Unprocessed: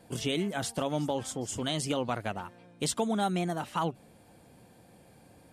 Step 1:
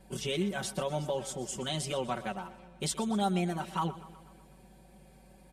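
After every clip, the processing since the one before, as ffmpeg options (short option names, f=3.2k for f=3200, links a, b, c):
-af "aeval=exprs='val(0)+0.00158*(sin(2*PI*50*n/s)+sin(2*PI*2*50*n/s)/2+sin(2*PI*3*50*n/s)/3+sin(2*PI*4*50*n/s)/4+sin(2*PI*5*50*n/s)/5)':c=same,aecho=1:1:5.3:0.99,aecho=1:1:123|246|369|492|615|738:0.15|0.0883|0.0521|0.0307|0.0181|0.0107,volume=-5dB"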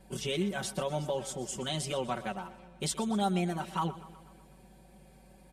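-af anull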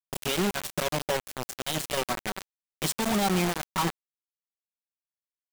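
-af "acrusher=bits=4:mix=0:aa=0.000001,volume=3dB"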